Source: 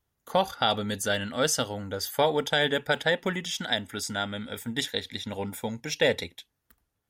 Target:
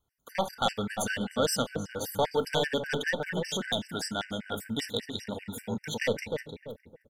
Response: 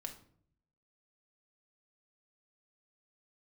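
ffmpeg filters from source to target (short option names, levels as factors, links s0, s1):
-filter_complex "[0:a]aeval=exprs='0.335*(cos(1*acos(clip(val(0)/0.335,-1,1)))-cos(1*PI/2))+0.0668*(cos(5*acos(clip(val(0)/0.335,-1,1)))-cos(5*PI/2))':c=same,asplit=2[s0][s1];[s1]adelay=306,lowpass=f=1100:p=1,volume=0.631,asplit=2[s2][s3];[s3]adelay=306,lowpass=f=1100:p=1,volume=0.37,asplit=2[s4][s5];[s5]adelay=306,lowpass=f=1100:p=1,volume=0.37,asplit=2[s6][s7];[s7]adelay=306,lowpass=f=1100:p=1,volume=0.37,asplit=2[s8][s9];[s9]adelay=306,lowpass=f=1100:p=1,volume=0.37[s10];[s0][s2][s4][s6][s8][s10]amix=inputs=6:normalize=0,asplit=2[s11][s12];[1:a]atrim=start_sample=2205[s13];[s12][s13]afir=irnorm=-1:irlink=0,volume=0.708[s14];[s11][s14]amix=inputs=2:normalize=0,afftfilt=real='re*gt(sin(2*PI*5.1*pts/sr)*(1-2*mod(floor(b*sr/1024/1500),2)),0)':imag='im*gt(sin(2*PI*5.1*pts/sr)*(1-2*mod(floor(b*sr/1024/1500),2)),0)':win_size=1024:overlap=0.75,volume=0.376"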